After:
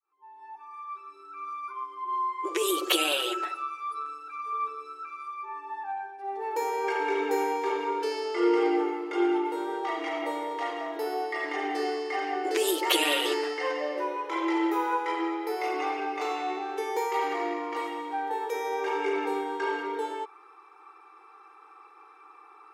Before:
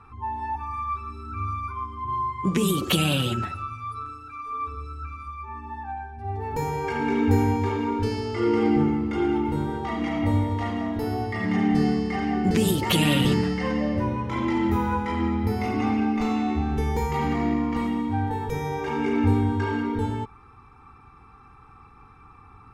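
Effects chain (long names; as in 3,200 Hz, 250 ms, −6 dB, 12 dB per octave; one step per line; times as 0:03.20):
fade in at the beginning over 2.69 s
linear-phase brick-wall high-pass 310 Hz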